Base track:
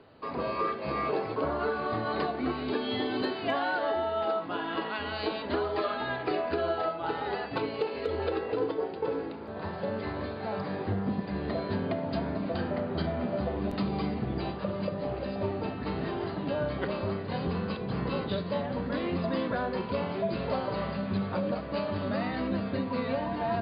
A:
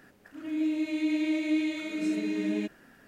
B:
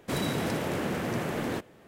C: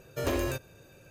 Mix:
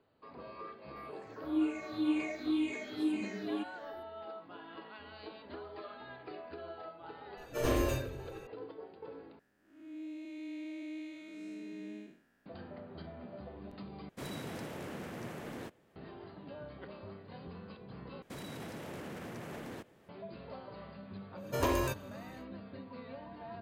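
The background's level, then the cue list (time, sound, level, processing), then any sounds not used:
base track −16.5 dB
0:00.96: mix in A −11 dB + rippled gain that drifts along the octave scale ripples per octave 0.6, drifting −2 Hz, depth 21 dB
0:07.37: mix in C −13.5 dB + rectangular room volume 74 cubic metres, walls mixed, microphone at 3 metres
0:09.39: overwrite with A −14.5 dB + spectrum smeared in time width 193 ms
0:14.09: overwrite with B −12.5 dB
0:18.22: overwrite with B −8 dB + brickwall limiter −28 dBFS
0:21.36: mix in C −2 dB, fades 0.10 s + parametric band 980 Hz +13.5 dB 0.2 octaves

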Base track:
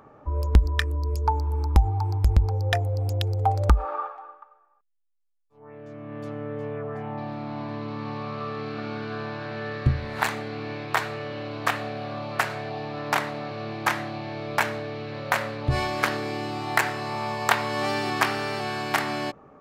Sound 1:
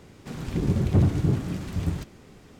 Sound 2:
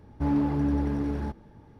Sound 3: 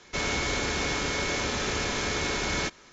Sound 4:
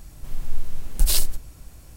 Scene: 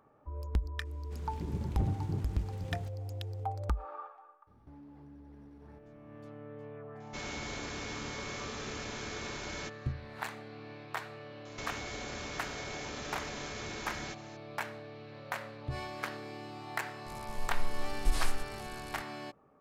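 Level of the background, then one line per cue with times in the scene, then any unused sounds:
base track −14 dB
0:00.85: mix in 1 −14 dB
0:04.47: mix in 2 −12 dB + downward compressor 8 to 1, threshold −38 dBFS
0:07.00: mix in 3 −12.5 dB
0:11.45: mix in 3 −2 dB + downward compressor, threshold −37 dBFS
0:17.06: mix in 4 −10 dB + linear delta modulator 64 kbit/s, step −33 dBFS

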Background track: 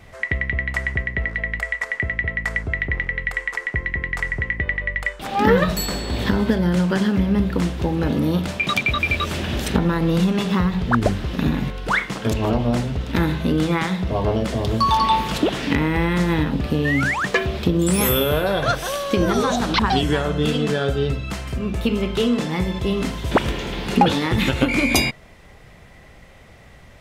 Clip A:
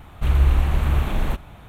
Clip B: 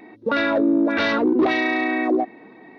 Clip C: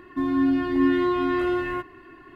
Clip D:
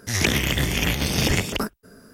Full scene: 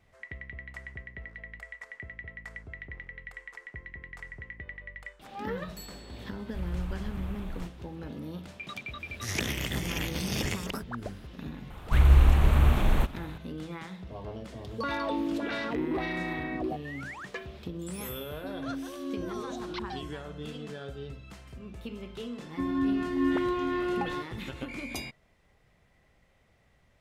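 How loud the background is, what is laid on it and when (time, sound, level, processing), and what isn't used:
background track −19.5 dB
0:06.32: mix in A −17.5 dB
0:09.14: mix in D −10.5 dB
0:11.70: mix in A −1.5 dB
0:14.52: mix in B −13 dB
0:18.27: mix in C −15.5 dB + spectral peaks only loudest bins 4
0:22.41: mix in C −6.5 dB

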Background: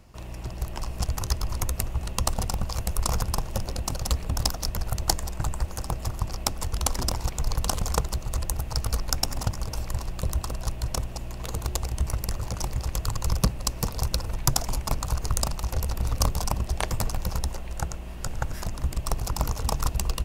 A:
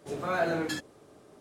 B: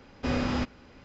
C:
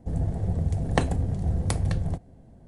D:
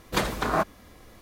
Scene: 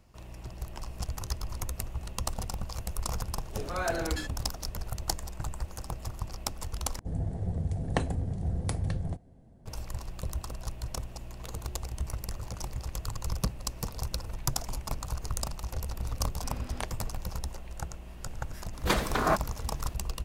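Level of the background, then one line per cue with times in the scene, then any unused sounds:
background −7.5 dB
0:03.47: mix in A −2.5 dB + low-shelf EQ 240 Hz −6.5 dB
0:06.99: overwrite with C −5.5 dB
0:16.20: mix in B −17.5 dB
0:18.73: mix in D −1.5 dB

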